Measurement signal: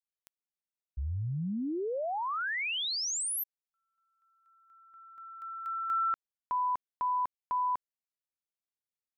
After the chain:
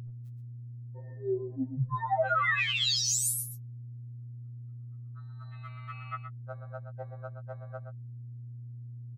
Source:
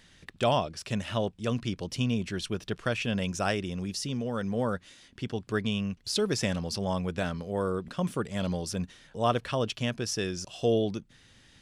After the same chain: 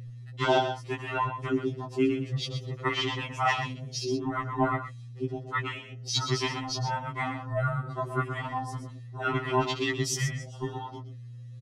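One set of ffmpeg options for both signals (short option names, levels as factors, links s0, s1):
-filter_complex "[0:a]afftfilt=real='real(if(between(b,1,1008),(2*floor((b-1)/24)+1)*24-b,b),0)':imag='imag(if(between(b,1,1008),(2*floor((b-1)/24)+1)*24-b,b),0)*if(between(b,1,1008),-1,1)':win_size=2048:overlap=0.75,highpass=f=130:p=1,afwtdn=0.0112,acrossover=split=240|5900[s0][s1][s2];[s0]acompressor=threshold=0.02:ratio=3:attack=82:release=127:knee=2.83:detection=peak[s3];[s3][s1][s2]amix=inputs=3:normalize=0,aeval=exprs='val(0)+0.00794*(sin(2*PI*60*n/s)+sin(2*PI*2*60*n/s)/2+sin(2*PI*3*60*n/s)/3+sin(2*PI*4*60*n/s)/4+sin(2*PI*5*60*n/s)/5)':c=same,aecho=1:1:6.2:0.74,asplit=2[s4][s5];[s5]aecho=0:1:122:0.355[s6];[s4][s6]amix=inputs=2:normalize=0,afftfilt=real='re*2.45*eq(mod(b,6),0)':imag='im*2.45*eq(mod(b,6),0)':win_size=2048:overlap=0.75,volume=1.78"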